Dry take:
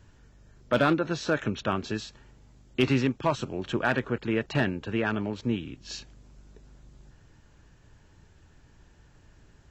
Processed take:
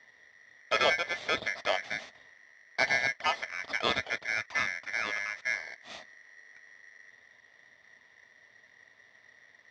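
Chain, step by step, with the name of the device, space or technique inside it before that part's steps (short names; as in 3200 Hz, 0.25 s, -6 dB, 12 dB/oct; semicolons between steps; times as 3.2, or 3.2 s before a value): 4.27–5.6 band shelf 1700 Hz -8.5 dB; ring modulator pedal into a guitar cabinet (polarity switched at an audio rate 1900 Hz; speaker cabinet 94–4200 Hz, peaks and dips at 170 Hz -7 dB, 330 Hz -7 dB, 640 Hz +9 dB, 1500 Hz -7 dB, 2600 Hz -8 dB)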